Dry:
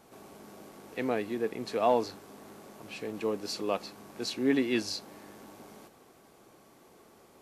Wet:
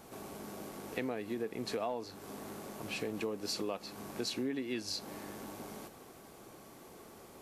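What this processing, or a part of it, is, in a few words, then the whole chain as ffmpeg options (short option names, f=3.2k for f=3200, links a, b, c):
ASMR close-microphone chain: -af "lowshelf=f=130:g=4.5,acompressor=threshold=-37dB:ratio=10,highshelf=f=8.7k:g=4.5,volume=3.5dB"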